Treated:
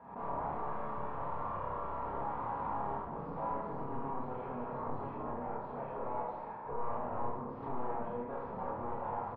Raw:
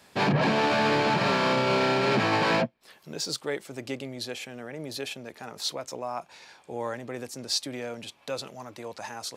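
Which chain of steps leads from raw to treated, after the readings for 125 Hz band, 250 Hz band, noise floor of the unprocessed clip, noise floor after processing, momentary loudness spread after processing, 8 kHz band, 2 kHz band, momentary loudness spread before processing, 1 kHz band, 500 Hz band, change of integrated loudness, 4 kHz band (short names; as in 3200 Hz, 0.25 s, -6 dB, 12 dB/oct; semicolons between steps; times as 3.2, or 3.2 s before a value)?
-12.5 dB, -13.0 dB, -59 dBFS, -44 dBFS, 3 LU, under -40 dB, -23.0 dB, 16 LU, -6.5 dB, -11.5 dB, -12.0 dB, under -40 dB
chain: reverse delay 0.499 s, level -9 dB; reverse; compressor 10:1, threshold -33 dBFS, peak gain reduction 13.5 dB; reverse; wavefolder -39 dBFS; ladder low-pass 1100 Hz, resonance 60%; on a send: loudspeakers at several distances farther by 10 m -1 dB, 27 m -5 dB; on the sum: shoebox room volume 450 m³, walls mixed, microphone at 1.7 m; backwards sustainer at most 83 dB/s; gain +6 dB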